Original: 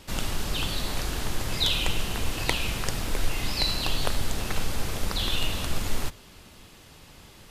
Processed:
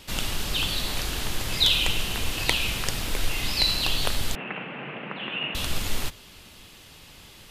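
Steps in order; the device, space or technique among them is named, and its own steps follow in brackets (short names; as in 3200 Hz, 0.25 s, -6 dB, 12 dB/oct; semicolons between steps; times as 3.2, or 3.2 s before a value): presence and air boost (bell 3100 Hz +6 dB 1.4 oct; high shelf 9200 Hz +6.5 dB); 4.35–5.55 Chebyshev band-pass 140–2800 Hz, order 5; gain -1 dB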